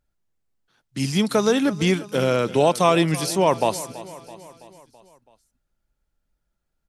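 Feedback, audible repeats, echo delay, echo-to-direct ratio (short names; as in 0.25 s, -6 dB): 57%, 4, 0.33 s, -15.5 dB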